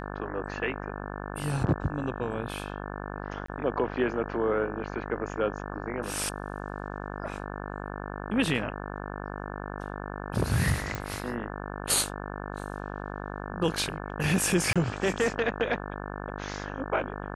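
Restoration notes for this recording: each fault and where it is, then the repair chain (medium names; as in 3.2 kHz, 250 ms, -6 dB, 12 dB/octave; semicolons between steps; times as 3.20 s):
buzz 50 Hz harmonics 35 -37 dBFS
3.46–3.48 s: dropout 24 ms
10.95 s: pop
14.73–14.76 s: dropout 26 ms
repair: de-click; de-hum 50 Hz, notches 35; interpolate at 3.46 s, 24 ms; interpolate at 14.73 s, 26 ms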